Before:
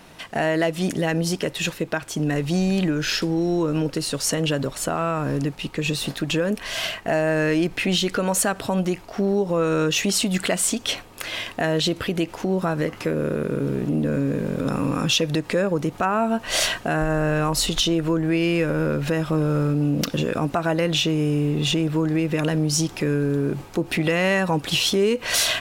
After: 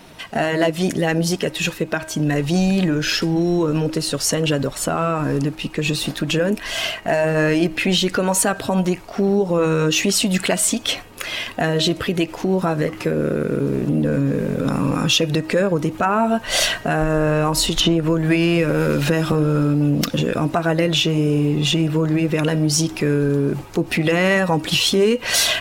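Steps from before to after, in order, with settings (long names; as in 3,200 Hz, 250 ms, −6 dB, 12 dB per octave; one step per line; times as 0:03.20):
spectral magnitudes quantised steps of 15 dB
hum removal 316.2 Hz, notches 9
0:17.80–0:19.32: multiband upward and downward compressor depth 100%
level +4 dB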